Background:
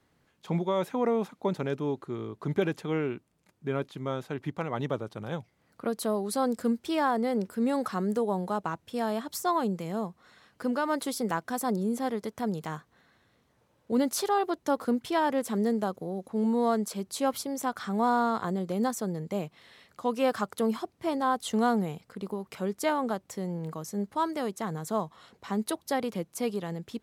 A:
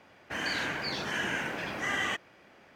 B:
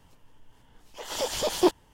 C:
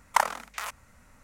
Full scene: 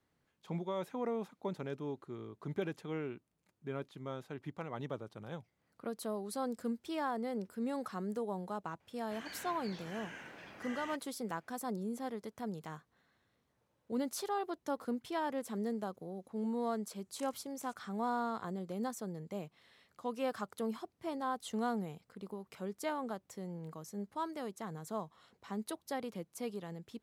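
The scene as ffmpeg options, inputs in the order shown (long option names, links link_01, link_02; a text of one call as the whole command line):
ffmpeg -i bed.wav -i cue0.wav -i cue1.wav -i cue2.wav -filter_complex "[0:a]volume=-10dB[link_01];[3:a]bandpass=frequency=7800:width_type=q:width=1.6:csg=0[link_02];[1:a]atrim=end=2.75,asetpts=PTS-STARTPTS,volume=-16.5dB,afade=type=in:duration=0.004:curve=hsin,afade=type=out:start_time=2.746:duration=0.004:curve=hsin,adelay=8800[link_03];[link_02]atrim=end=1.23,asetpts=PTS-STARTPTS,volume=-17.5dB,afade=type=in:duration=0.004:curve=hsin,afade=type=out:start_time=1.226:duration=0.004:curve=hsin,adelay=17030[link_04];[link_01][link_03][link_04]amix=inputs=3:normalize=0" out.wav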